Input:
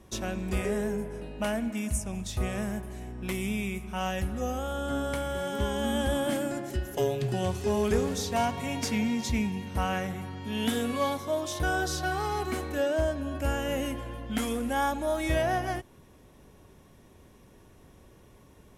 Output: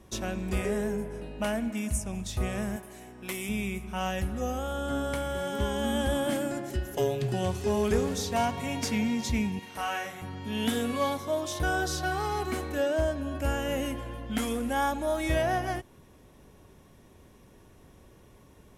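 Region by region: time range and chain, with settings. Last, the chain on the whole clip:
2.76–3.49 s: high-pass 410 Hz 6 dB/octave + treble shelf 8.6 kHz +6 dB
9.59–10.22 s: high-pass 910 Hz 6 dB/octave + doubling 35 ms -2.5 dB
whole clip: none

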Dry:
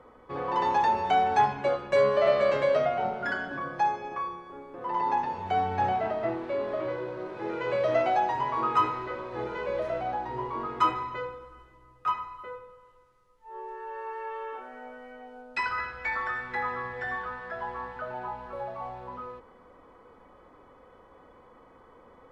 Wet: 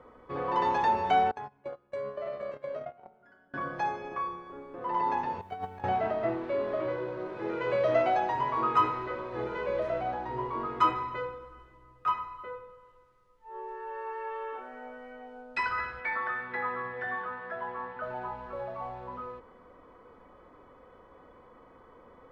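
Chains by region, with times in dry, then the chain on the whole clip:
1.31–3.54 s: gate -25 dBFS, range -27 dB + peaking EQ 3.7 kHz -6 dB 2.1 oct + compression 4:1, threshold -35 dBFS
5.41–5.84 s: gate -26 dBFS, range -22 dB + companded quantiser 8-bit + compressor with a negative ratio -37 dBFS
16.00–18.03 s: band-pass 140–4100 Hz + distance through air 64 m
whole clip: treble shelf 5 kHz -7 dB; band-stop 820 Hz, Q 15

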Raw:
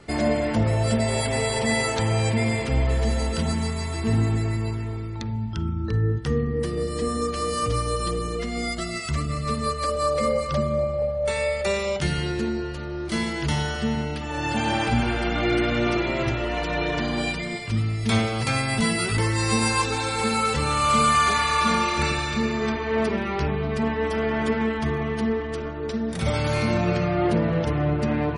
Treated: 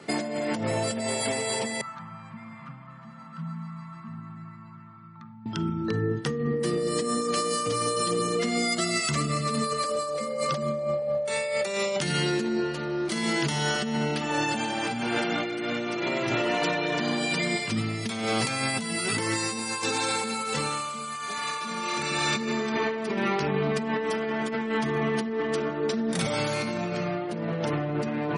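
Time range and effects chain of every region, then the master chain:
1.81–5.46 s: compression 2:1, threshold -26 dBFS + two resonant band-passes 440 Hz, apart 2.9 oct
whole clip: high-pass 150 Hz 24 dB/octave; dynamic bell 7.6 kHz, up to +5 dB, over -45 dBFS, Q 0.71; compressor with a negative ratio -28 dBFS, ratio -1

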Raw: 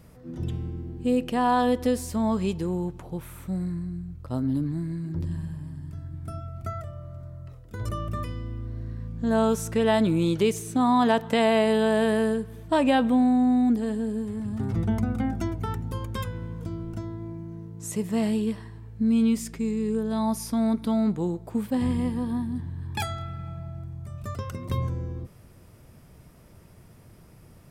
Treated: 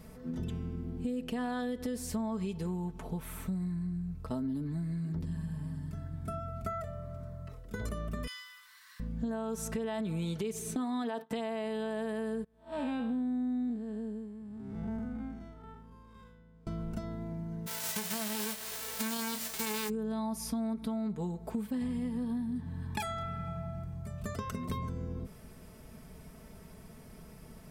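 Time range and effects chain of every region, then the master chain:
8.27–9.00 s: elliptic high-pass 1 kHz + tilt EQ +4.5 dB/octave
10.75–11.31 s: gate -34 dBFS, range -26 dB + high-pass 230 Hz 24 dB/octave + band-stop 6.7 kHz, Q 5.2
12.44–16.67 s: spectral blur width 173 ms + treble shelf 7.5 kHz -8.5 dB + upward expansion 2.5:1, over -34 dBFS
17.66–19.88 s: formants flattened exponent 0.1 + doubling 28 ms -12 dB
whole clip: comb 4.6 ms, depth 68%; peak limiter -17 dBFS; compression 5:1, threshold -33 dBFS

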